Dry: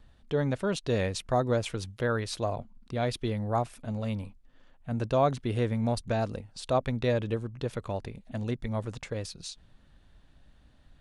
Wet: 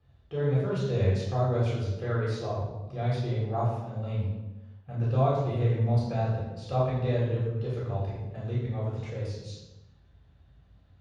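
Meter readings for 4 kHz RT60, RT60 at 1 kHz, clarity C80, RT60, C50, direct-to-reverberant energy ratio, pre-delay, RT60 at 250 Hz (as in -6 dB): 0.75 s, 1.0 s, 3.0 dB, 1.1 s, 0.5 dB, -8.5 dB, 3 ms, no reading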